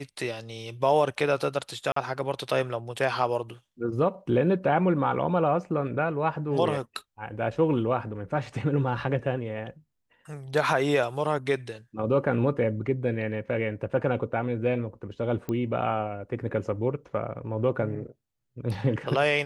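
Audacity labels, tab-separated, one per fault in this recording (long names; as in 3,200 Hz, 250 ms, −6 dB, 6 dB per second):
1.920000	1.960000	drop-out 44 ms
15.490000	15.490000	click −19 dBFS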